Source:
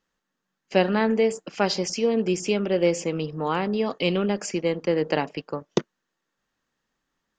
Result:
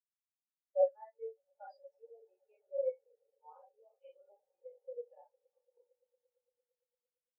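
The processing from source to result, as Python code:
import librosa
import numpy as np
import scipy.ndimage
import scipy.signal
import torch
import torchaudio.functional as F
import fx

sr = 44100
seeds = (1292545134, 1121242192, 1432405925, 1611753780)

p1 = scipy.signal.sosfilt(scipy.signal.butter(4, 560.0, 'highpass', fs=sr, output='sos'), x)
p2 = fx.high_shelf(p1, sr, hz=7600.0, db=-5.5)
p3 = p2 + fx.echo_swell(p2, sr, ms=114, loudest=8, wet_db=-14, dry=0)
p4 = fx.rev_schroeder(p3, sr, rt60_s=0.31, comb_ms=31, drr_db=-0.5)
p5 = fx.spectral_expand(p4, sr, expansion=4.0)
y = p5 * 10.0 ** (-8.5 / 20.0)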